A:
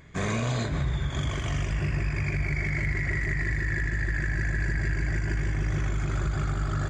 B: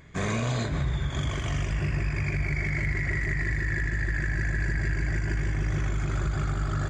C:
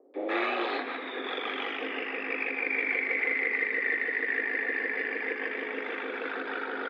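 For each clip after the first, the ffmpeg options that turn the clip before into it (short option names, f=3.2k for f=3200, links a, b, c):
-af anull
-filter_complex "[0:a]acrossover=split=550[a][b];[b]adelay=140[c];[a][c]amix=inputs=2:normalize=0,highpass=f=240:t=q:w=0.5412,highpass=f=240:t=q:w=1.307,lowpass=f=3.5k:t=q:w=0.5176,lowpass=f=3.5k:t=q:w=0.7071,lowpass=f=3.5k:t=q:w=1.932,afreqshift=120,volume=4dB"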